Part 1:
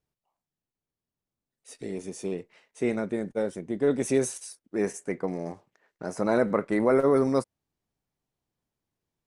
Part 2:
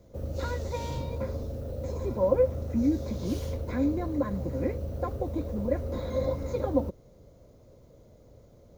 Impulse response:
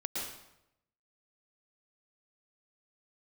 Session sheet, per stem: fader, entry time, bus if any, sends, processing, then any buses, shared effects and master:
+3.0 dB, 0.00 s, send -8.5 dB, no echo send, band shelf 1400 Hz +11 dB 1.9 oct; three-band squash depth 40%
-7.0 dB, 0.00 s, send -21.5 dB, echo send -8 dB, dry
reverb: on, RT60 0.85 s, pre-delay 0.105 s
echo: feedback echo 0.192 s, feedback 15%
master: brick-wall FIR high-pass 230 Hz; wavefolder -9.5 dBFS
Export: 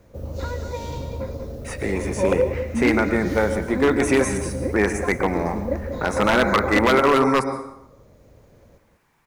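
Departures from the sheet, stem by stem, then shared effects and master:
stem 2 -7.0 dB -> +2.0 dB; master: missing brick-wall FIR high-pass 230 Hz

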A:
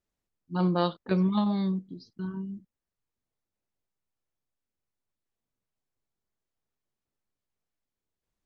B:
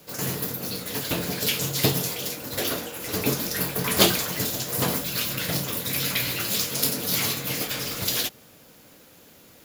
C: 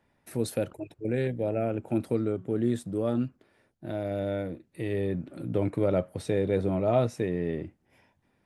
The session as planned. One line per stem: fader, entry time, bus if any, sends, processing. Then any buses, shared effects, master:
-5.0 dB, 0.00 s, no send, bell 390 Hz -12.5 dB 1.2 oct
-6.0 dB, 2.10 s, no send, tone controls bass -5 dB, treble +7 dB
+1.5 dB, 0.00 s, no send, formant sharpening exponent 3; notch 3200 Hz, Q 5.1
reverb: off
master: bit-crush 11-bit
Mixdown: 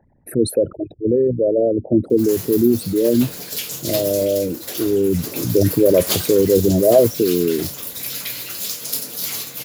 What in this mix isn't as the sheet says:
stem A: muted; stem C +1.5 dB -> +12.0 dB; master: missing bit-crush 11-bit

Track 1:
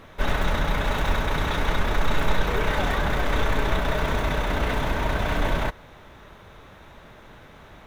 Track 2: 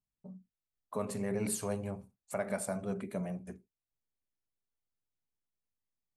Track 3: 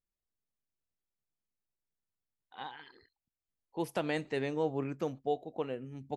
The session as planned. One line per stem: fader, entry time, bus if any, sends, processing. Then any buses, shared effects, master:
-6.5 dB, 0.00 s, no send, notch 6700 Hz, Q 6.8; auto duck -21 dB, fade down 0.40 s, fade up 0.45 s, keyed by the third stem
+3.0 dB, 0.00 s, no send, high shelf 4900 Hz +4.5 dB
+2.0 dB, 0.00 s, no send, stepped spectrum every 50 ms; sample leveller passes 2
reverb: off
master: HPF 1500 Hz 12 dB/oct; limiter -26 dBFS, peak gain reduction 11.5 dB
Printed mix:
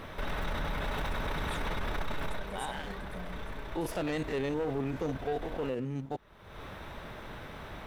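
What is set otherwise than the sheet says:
stem 1 -6.5 dB -> +3.0 dB; stem 2 +3.0 dB -> -8.5 dB; master: missing HPF 1500 Hz 12 dB/oct

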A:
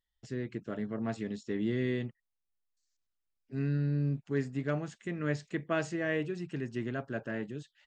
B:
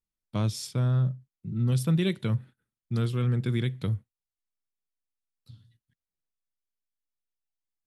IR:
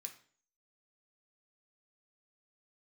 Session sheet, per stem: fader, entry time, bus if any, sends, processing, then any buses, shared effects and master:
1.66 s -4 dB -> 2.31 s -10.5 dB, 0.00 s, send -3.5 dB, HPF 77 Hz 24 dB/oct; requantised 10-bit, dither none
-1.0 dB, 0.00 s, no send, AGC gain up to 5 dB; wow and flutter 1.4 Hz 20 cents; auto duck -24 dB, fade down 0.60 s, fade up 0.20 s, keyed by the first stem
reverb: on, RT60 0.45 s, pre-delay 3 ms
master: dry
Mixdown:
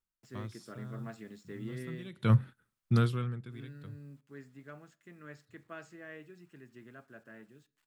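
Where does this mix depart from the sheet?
stem A -4.0 dB -> -12.0 dB; master: extra bell 1300 Hz +6.5 dB 0.88 oct

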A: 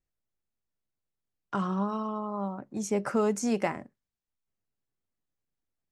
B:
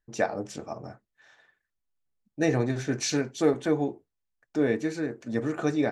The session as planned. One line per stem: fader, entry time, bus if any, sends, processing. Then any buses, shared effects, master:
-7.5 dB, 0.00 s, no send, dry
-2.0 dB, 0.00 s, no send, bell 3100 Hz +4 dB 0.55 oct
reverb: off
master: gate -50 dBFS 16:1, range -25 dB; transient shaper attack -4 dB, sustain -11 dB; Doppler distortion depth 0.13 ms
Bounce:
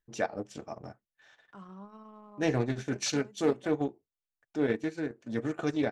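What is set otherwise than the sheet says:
stem A -7.5 dB -> -17.0 dB; master: missing gate -50 dBFS 16:1, range -25 dB

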